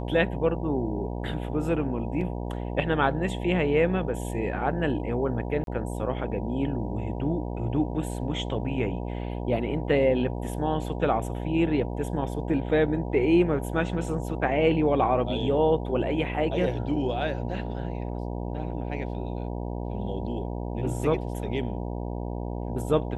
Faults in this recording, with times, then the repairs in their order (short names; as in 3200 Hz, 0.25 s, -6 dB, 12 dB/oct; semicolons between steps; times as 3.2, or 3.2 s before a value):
buzz 60 Hz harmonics 16 -32 dBFS
2.21 gap 3.1 ms
5.64–5.67 gap 32 ms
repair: de-hum 60 Hz, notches 16; interpolate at 2.21, 3.1 ms; interpolate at 5.64, 32 ms